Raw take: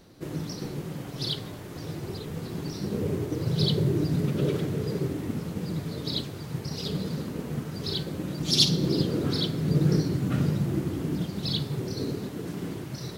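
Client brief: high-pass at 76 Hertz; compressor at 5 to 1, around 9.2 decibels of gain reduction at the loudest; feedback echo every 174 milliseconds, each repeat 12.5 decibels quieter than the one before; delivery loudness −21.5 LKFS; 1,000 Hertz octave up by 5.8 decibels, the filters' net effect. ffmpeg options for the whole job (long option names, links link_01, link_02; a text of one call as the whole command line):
ffmpeg -i in.wav -af "highpass=76,equalizer=frequency=1000:width_type=o:gain=7.5,acompressor=threshold=-27dB:ratio=5,aecho=1:1:174|348|522:0.237|0.0569|0.0137,volume=11dB" out.wav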